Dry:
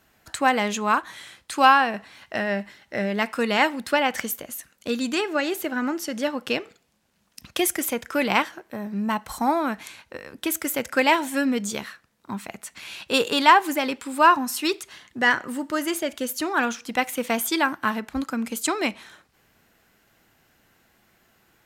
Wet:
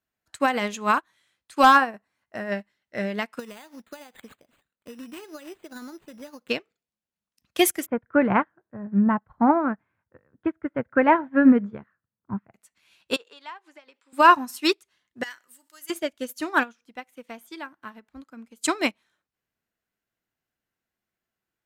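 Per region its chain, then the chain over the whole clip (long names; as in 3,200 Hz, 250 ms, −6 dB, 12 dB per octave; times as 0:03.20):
0:01.63–0:02.52: parametric band 3,400 Hz −10 dB 1.2 octaves + hard clipping −10.5 dBFS
0:03.39–0:06.49: high-shelf EQ 3,800 Hz −8 dB + downward compressor 16 to 1, threshold −26 dBFS + bad sample-rate conversion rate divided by 8×, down none, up hold
0:07.86–0:12.54: Chebyshev low-pass filter 1,600 Hz, order 3 + parametric band 110 Hz +12 dB 1.4 octaves
0:13.16–0:14.13: band-pass filter 460–5,900 Hz + downward compressor 3 to 1, threshold −32 dBFS
0:15.23–0:15.90: first-order pre-emphasis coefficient 0.97 + envelope flattener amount 50%
0:16.63–0:18.64: high-shelf EQ 3,900 Hz −5 dB + downward compressor 1.5 to 1, threshold −37 dBFS
whole clip: notch filter 820 Hz, Q 19; boost into a limiter +11 dB; expander for the loud parts 2.5 to 1, over −29 dBFS; level −3 dB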